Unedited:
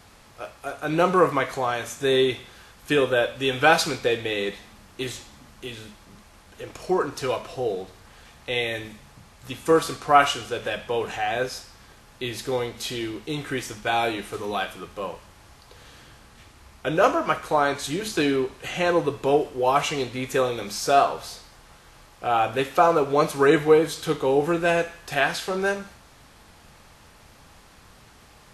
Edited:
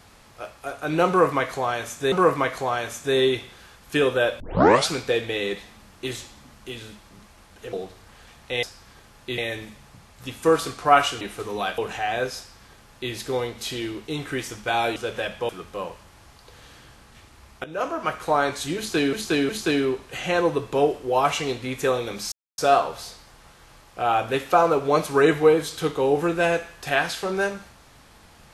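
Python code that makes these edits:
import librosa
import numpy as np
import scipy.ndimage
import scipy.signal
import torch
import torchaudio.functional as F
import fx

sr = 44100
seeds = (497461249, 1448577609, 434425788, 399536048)

y = fx.edit(x, sr, fx.repeat(start_s=1.08, length_s=1.04, count=2),
    fx.tape_start(start_s=3.36, length_s=0.48),
    fx.cut(start_s=6.69, length_s=1.02),
    fx.swap(start_s=10.44, length_s=0.53, other_s=14.15, other_length_s=0.57),
    fx.duplicate(start_s=11.56, length_s=0.75, to_s=8.61),
    fx.fade_in_from(start_s=16.87, length_s=0.62, floor_db=-17.5),
    fx.repeat(start_s=18.0, length_s=0.36, count=3),
    fx.insert_silence(at_s=20.83, length_s=0.26), tone=tone)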